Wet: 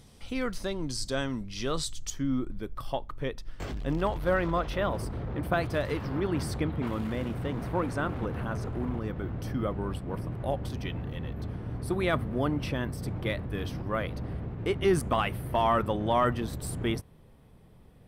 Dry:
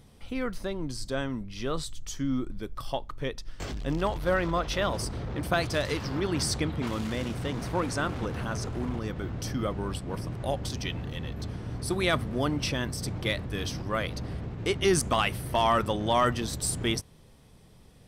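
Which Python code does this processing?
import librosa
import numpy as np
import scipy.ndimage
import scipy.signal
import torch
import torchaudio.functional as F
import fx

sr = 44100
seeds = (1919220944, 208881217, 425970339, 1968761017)

y = fx.peak_eq(x, sr, hz=6100.0, db=fx.steps((0.0, 5.5), (2.1, -7.5), (4.7, -14.5)), octaves=1.8)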